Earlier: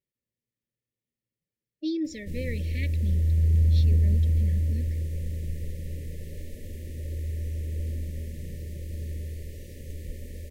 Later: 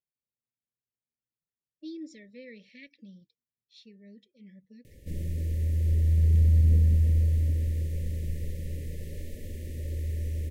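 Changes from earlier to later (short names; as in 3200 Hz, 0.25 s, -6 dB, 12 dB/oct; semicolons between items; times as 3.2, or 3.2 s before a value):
speech -11.0 dB; background: entry +2.80 s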